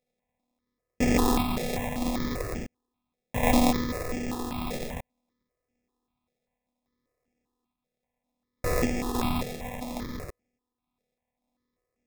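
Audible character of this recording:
a buzz of ramps at a fixed pitch in blocks of 16 samples
sample-and-hold tremolo
aliases and images of a low sample rate 1,500 Hz, jitter 0%
notches that jump at a steady rate 5.1 Hz 280–3,900 Hz

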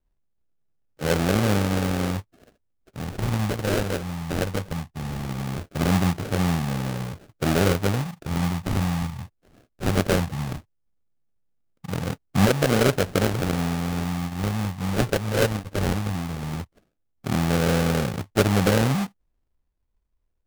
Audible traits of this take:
phaser sweep stages 8, 0.18 Hz, lowest notch 350–1,200 Hz
aliases and images of a low sample rate 1,000 Hz, jitter 20%

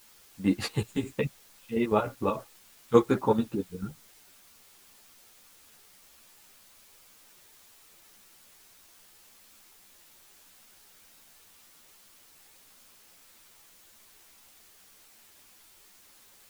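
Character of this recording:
chopped level 6.8 Hz, depth 65%, duty 55%
a quantiser's noise floor 10 bits, dither triangular
a shimmering, thickened sound

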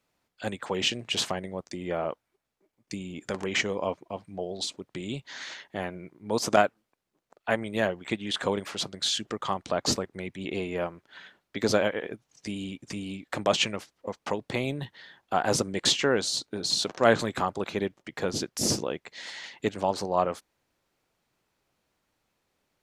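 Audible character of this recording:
background noise floor −81 dBFS
spectral slope −3.0 dB per octave

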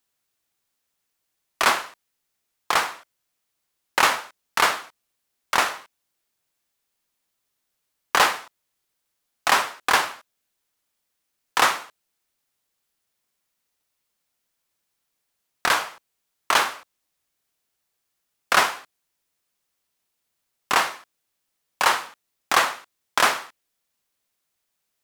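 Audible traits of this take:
background noise floor −78 dBFS
spectral slope −1.5 dB per octave

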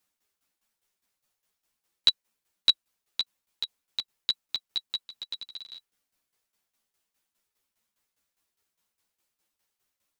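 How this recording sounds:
tremolo saw down 4.9 Hz, depth 80%
a shimmering, thickened sound

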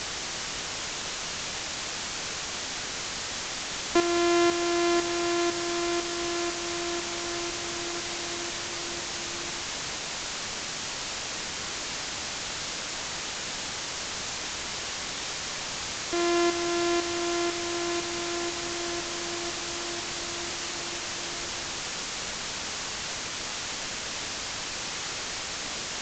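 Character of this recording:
a buzz of ramps at a fixed pitch in blocks of 128 samples
tremolo saw up 2 Hz, depth 70%
a quantiser's noise floor 6 bits, dither triangular
mu-law

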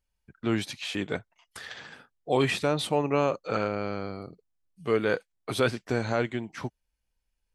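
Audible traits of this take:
background noise floor −81 dBFS
spectral slope −4.5 dB per octave

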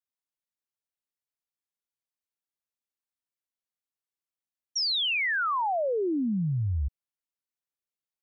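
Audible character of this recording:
background noise floor −94 dBFS
spectral slope −3.0 dB per octave

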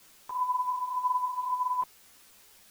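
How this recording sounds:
tremolo saw down 2.9 Hz, depth 35%
a quantiser's noise floor 10 bits, dither triangular
a shimmering, thickened sound

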